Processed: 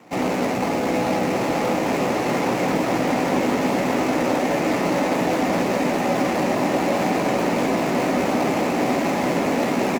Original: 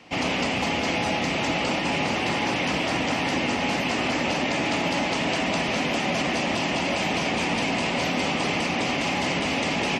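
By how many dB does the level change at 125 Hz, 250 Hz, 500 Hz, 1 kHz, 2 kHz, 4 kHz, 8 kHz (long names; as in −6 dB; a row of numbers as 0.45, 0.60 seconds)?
+2.5, +6.0, +7.0, +4.0, −2.0, −6.5, +0.5 decibels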